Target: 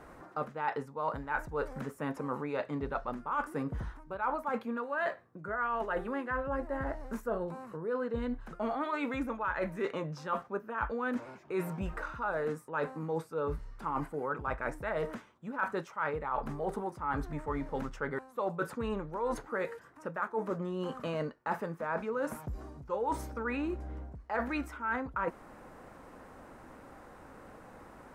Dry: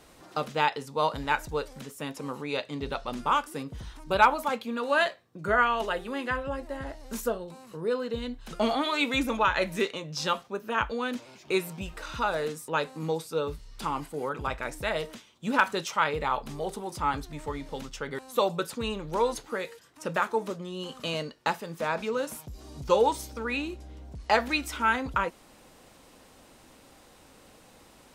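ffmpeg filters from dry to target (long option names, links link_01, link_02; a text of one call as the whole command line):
ffmpeg -i in.wav -af "highshelf=frequency=2300:width_type=q:width=1.5:gain=-13.5,areverse,acompressor=threshold=-34dB:ratio=10,areverse,volume=3.5dB" out.wav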